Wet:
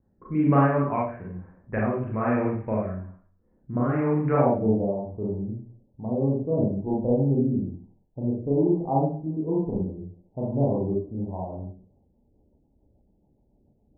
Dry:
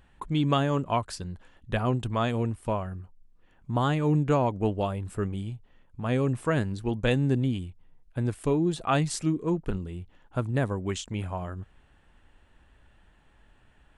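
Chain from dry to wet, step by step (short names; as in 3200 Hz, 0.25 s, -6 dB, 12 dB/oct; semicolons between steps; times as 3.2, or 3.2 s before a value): low-pass opened by the level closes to 380 Hz, open at -25 dBFS; steep low-pass 2300 Hz 72 dB/oct, from 4.35 s 910 Hz; Schroeder reverb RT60 0.51 s, combs from 29 ms, DRR -5 dB; rotary speaker horn 1.1 Hz, later 7 Hz, at 11.55; HPF 120 Hz 6 dB/oct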